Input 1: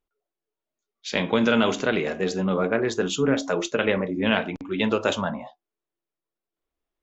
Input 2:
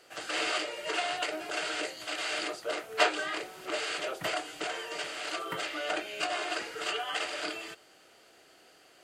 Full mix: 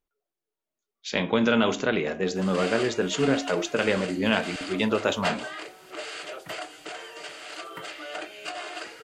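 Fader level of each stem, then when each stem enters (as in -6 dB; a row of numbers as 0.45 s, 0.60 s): -1.5 dB, -3.0 dB; 0.00 s, 2.25 s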